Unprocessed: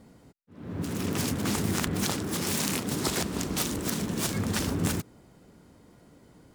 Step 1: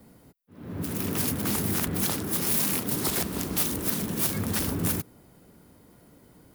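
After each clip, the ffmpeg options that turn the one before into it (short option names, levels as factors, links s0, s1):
-filter_complex "[0:a]acrossover=split=230|580|3700[s0][s1][s2][s3];[s3]aexciter=amount=3.8:drive=5.2:freq=10000[s4];[s0][s1][s2][s4]amix=inputs=4:normalize=0,asoftclip=type=tanh:threshold=0.158"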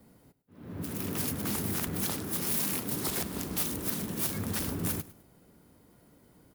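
-af "aecho=1:1:102|204|306:0.133|0.04|0.012,volume=0.562"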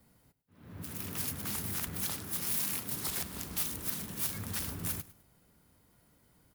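-af "equalizer=f=340:t=o:w=2.4:g=-9,volume=0.794"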